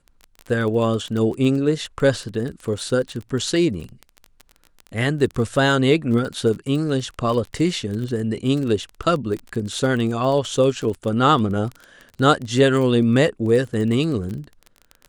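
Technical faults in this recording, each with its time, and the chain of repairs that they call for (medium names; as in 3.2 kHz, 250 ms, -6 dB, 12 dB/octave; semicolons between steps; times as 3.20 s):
crackle 22 per s -26 dBFS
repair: de-click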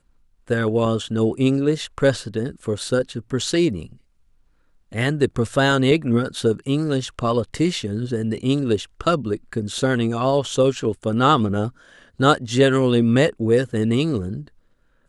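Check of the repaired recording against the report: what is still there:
nothing left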